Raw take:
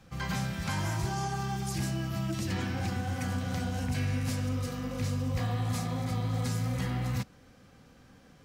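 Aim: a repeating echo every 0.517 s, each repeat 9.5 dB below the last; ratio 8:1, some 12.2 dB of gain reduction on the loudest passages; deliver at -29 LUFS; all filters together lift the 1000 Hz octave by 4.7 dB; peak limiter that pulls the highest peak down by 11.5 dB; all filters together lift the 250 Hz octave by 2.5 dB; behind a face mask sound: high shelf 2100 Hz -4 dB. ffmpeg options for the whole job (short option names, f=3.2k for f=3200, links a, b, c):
-af "equalizer=f=250:t=o:g=3,equalizer=f=1k:t=o:g=7,acompressor=threshold=-39dB:ratio=8,alimiter=level_in=18dB:limit=-24dB:level=0:latency=1,volume=-18dB,highshelf=f=2.1k:g=-4,aecho=1:1:517|1034|1551|2068:0.335|0.111|0.0365|0.012,volume=21dB"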